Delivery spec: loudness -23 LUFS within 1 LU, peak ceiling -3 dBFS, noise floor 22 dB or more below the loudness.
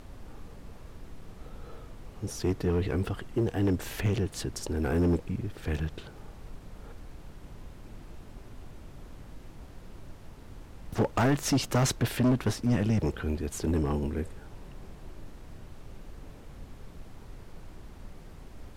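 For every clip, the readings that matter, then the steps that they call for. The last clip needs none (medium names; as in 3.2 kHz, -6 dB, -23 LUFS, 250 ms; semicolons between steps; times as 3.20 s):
clipped samples 1.3%; clipping level -20.0 dBFS; noise floor -48 dBFS; noise floor target -52 dBFS; loudness -29.5 LUFS; peak level -20.0 dBFS; loudness target -23.0 LUFS
-> clip repair -20 dBFS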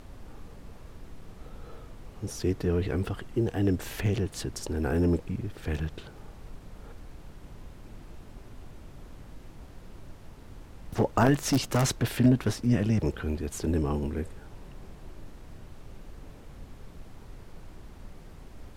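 clipped samples 0.0%; noise floor -48 dBFS; noise floor target -51 dBFS
-> noise print and reduce 6 dB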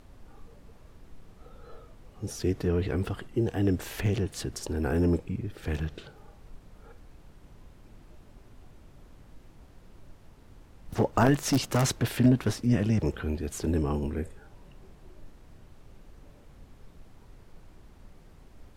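noise floor -54 dBFS; loudness -28.5 LUFS; peak level -11.0 dBFS; loudness target -23.0 LUFS
-> trim +5.5 dB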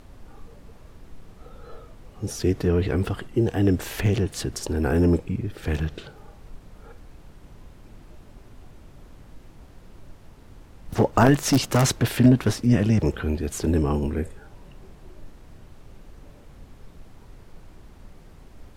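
loudness -23.0 LUFS; peak level -5.5 dBFS; noise floor -49 dBFS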